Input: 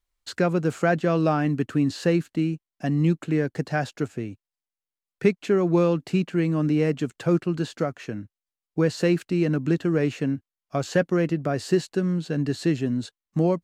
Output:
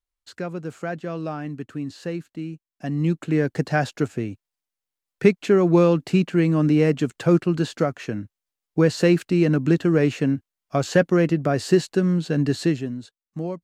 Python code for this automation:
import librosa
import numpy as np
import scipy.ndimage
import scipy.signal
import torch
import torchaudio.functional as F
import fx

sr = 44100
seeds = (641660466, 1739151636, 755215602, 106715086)

y = fx.gain(x, sr, db=fx.line((2.39, -8.0), (3.51, 4.0), (12.61, 4.0), (13.01, -7.5)))